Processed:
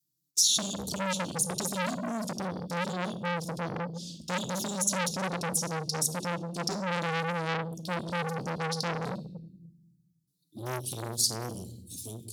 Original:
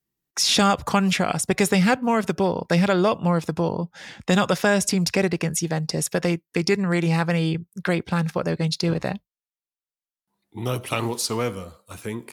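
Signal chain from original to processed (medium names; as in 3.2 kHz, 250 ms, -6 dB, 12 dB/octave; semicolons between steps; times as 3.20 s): 1.31–3.64 s: compression 3:1, threshold -20 dBFS, peak gain reduction 5 dB; high-pass 65 Hz 12 dB/octave; touch-sensitive flanger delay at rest 6.7 ms, full sweep at -19 dBFS; tilt shelf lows -8 dB, about 700 Hz; hum notches 50/100/150/200 Hz; simulated room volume 340 m³, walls mixed, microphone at 0.41 m; peak limiter -12 dBFS, peak gain reduction 8.5 dB; inverse Chebyshev band-stop 680–2100 Hz, stop band 50 dB; peaking EQ 110 Hz +8.5 dB 2.8 oct; transformer saturation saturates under 2.8 kHz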